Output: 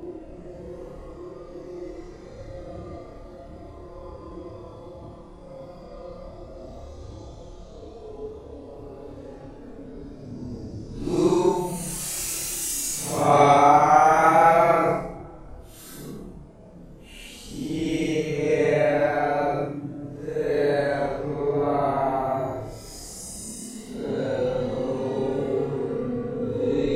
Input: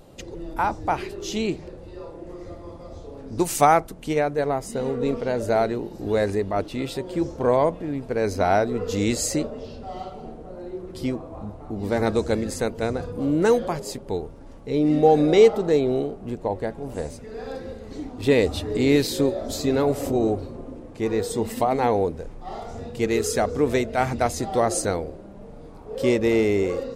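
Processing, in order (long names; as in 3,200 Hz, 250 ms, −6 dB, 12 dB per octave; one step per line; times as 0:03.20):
extreme stretch with random phases 9.5×, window 0.05 s, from 0:02.22
flutter between parallel walls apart 4.8 metres, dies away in 0.3 s
level −2.5 dB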